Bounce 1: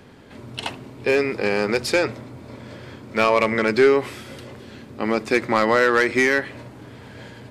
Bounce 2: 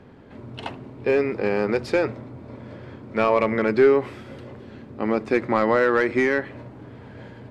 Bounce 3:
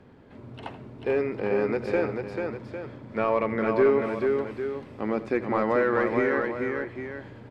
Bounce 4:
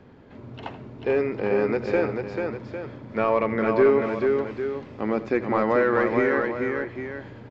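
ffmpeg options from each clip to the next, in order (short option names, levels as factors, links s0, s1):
-af "lowpass=f=1200:p=1"
-filter_complex "[0:a]acrossover=split=2500[s0][s1];[s1]acompressor=threshold=0.00562:ratio=4:attack=1:release=60[s2];[s0][s2]amix=inputs=2:normalize=0,aecho=1:1:84|440|802:0.158|0.596|0.299,volume=0.562"
-af "aresample=16000,aresample=44100,volume=1.33"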